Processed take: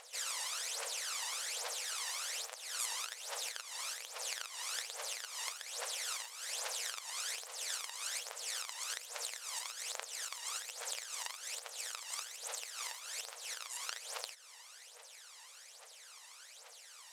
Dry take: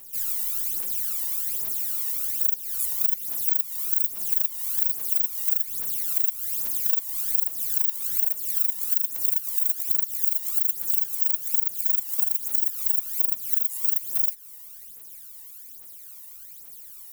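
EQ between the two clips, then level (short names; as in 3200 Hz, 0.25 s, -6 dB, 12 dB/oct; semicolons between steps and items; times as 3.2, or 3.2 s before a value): brick-wall FIR high-pass 440 Hz; LPF 7400 Hz 12 dB/oct; air absorption 68 m; +7.5 dB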